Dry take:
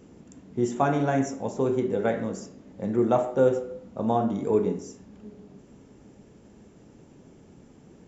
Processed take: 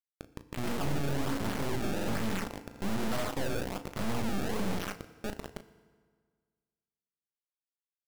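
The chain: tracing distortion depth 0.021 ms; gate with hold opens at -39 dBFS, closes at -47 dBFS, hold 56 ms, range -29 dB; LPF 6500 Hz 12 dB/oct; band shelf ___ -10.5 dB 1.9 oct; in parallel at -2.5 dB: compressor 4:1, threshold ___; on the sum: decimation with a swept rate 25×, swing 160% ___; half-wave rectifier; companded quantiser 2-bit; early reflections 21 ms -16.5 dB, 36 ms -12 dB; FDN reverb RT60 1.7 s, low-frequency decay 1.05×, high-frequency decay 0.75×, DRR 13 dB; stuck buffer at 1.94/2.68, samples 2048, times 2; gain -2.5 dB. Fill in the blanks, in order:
540 Hz, -38 dBFS, 1.2 Hz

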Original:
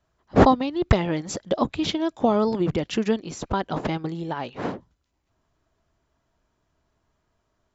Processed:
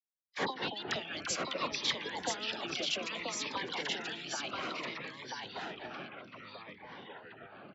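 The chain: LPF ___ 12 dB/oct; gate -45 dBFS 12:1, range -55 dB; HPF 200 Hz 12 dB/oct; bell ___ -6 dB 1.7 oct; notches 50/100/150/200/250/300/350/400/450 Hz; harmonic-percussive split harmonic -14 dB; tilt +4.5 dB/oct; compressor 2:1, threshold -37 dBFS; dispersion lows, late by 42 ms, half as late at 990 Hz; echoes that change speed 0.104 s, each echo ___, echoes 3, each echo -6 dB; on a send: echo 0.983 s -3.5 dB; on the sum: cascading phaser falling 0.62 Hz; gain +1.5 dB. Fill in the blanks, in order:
3600 Hz, 550 Hz, -4 st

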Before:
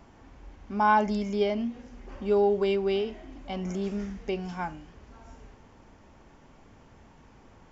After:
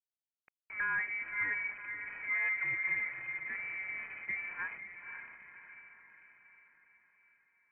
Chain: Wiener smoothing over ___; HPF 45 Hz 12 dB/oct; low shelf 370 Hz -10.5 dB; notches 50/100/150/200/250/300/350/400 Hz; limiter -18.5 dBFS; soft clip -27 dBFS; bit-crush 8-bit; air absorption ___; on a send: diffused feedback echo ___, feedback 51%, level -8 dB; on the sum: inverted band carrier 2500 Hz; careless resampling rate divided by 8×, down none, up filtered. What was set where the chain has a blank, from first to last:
15 samples, 430 m, 0.534 s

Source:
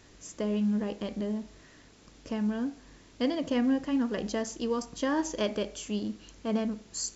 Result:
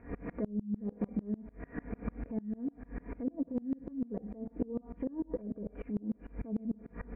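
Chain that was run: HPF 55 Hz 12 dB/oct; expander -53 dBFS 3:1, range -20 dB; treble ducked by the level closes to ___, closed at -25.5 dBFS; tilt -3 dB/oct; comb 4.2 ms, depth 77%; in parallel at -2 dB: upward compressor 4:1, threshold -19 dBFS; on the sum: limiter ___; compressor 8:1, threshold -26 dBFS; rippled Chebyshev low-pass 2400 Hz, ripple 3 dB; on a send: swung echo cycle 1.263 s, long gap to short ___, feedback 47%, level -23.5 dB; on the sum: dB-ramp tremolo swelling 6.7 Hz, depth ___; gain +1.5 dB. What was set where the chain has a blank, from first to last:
370 Hz, -10.5 dBFS, 1.5:1, 28 dB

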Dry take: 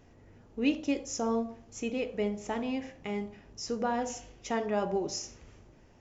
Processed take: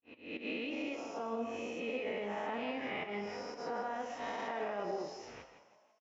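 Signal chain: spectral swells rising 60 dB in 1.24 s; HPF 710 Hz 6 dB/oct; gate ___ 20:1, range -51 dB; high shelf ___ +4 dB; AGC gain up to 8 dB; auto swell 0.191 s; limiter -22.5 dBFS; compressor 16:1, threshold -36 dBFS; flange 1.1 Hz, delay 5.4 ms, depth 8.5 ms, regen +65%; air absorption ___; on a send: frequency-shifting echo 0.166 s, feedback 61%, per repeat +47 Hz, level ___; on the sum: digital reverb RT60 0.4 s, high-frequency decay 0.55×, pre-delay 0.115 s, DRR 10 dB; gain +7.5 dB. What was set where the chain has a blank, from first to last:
-55 dBFS, 3800 Hz, 360 m, -16 dB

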